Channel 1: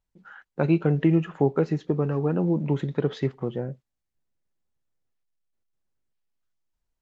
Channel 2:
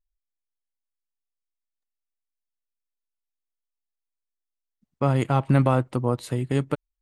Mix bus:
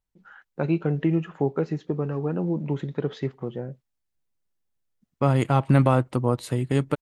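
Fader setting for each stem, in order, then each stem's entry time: −2.5, +1.0 decibels; 0.00, 0.20 seconds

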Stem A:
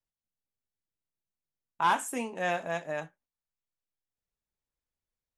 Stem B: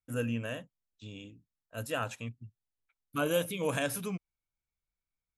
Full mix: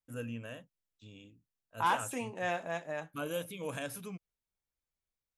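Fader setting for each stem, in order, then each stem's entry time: −4.0, −7.5 decibels; 0.00, 0.00 seconds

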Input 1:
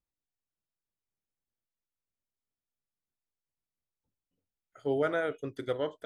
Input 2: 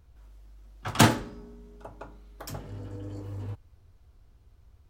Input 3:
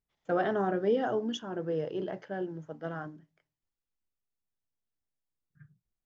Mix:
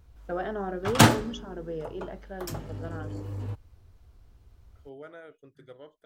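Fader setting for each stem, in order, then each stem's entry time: −16.0, +2.0, −3.5 decibels; 0.00, 0.00, 0.00 seconds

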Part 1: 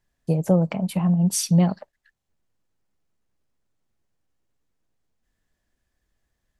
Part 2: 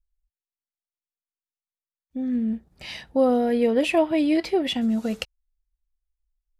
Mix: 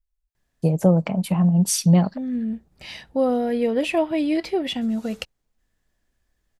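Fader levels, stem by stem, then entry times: +2.0, −1.0 decibels; 0.35, 0.00 seconds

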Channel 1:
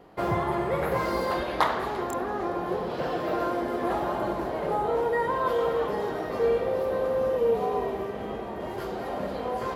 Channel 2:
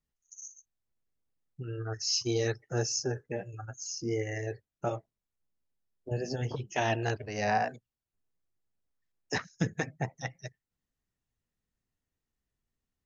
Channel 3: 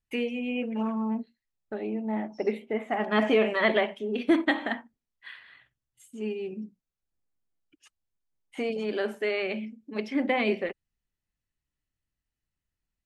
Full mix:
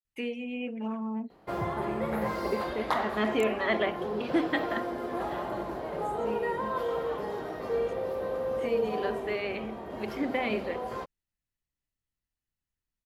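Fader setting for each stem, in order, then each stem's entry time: −5.5 dB, muted, −4.5 dB; 1.30 s, muted, 0.05 s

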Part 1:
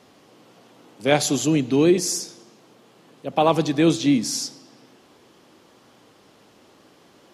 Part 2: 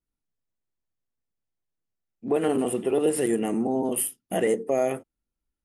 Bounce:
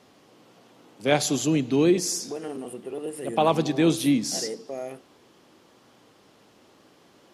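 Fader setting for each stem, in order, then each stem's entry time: −3.0, −10.5 decibels; 0.00, 0.00 seconds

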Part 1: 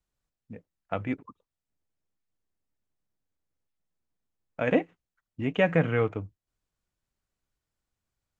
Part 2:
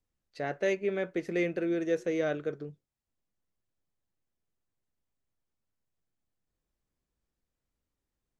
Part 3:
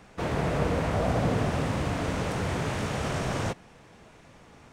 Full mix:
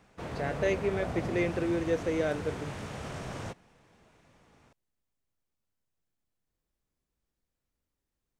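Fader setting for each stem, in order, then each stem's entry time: muted, 0.0 dB, −9.5 dB; muted, 0.00 s, 0.00 s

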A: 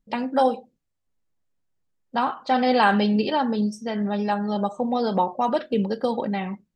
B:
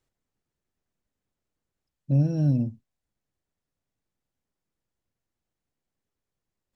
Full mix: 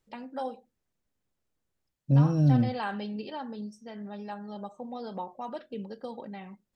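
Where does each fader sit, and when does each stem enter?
−15.0, +0.5 decibels; 0.00, 0.00 seconds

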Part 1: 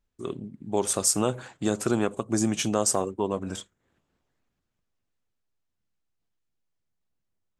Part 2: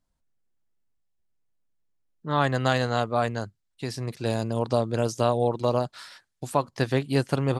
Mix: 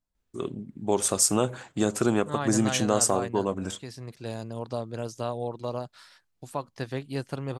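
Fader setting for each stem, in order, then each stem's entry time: +1.0, −8.5 decibels; 0.15, 0.00 seconds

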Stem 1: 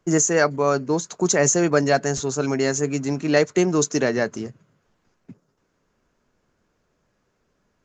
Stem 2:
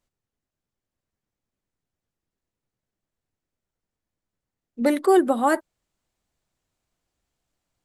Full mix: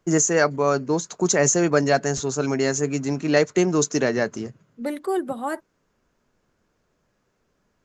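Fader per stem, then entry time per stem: −0.5, −7.5 decibels; 0.00, 0.00 seconds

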